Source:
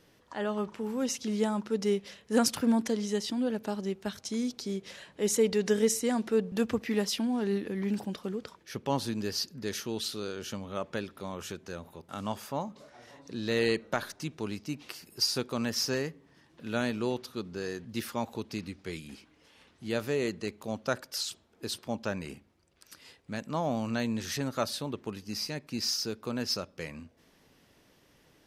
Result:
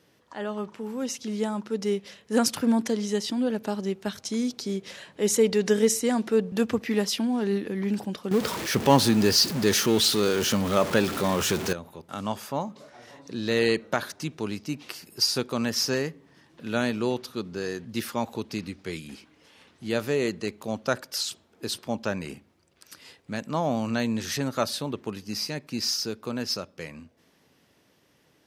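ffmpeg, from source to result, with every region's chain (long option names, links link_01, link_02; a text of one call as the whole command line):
ffmpeg -i in.wav -filter_complex "[0:a]asettb=1/sr,asplit=3[link_01][link_02][link_03];[link_01]atrim=end=8.314[link_04];[link_02]atrim=start=8.31:end=11.73,asetpts=PTS-STARTPTS,afade=type=in:duration=0.004:curve=qsin,afade=type=out:start_time=3.416:duration=0.004:curve=qsin,aeval=exprs='val(0)+0.5*0.0126*sgn(val(0))':channel_layout=same,acontrast=87,acrusher=bits=7:mix=0:aa=0.5[link_05];[link_03]atrim=start=11.726[link_06];[link_04][link_05]acrossfade=duration=0.004:curve1=hsin:curve2=qsin[link_07];[link_07][link_06]acrossfade=duration=0.004:curve1=qsin:curve2=hsin,highpass=82,dynaudnorm=framelen=280:gausssize=17:maxgain=4.5dB" out.wav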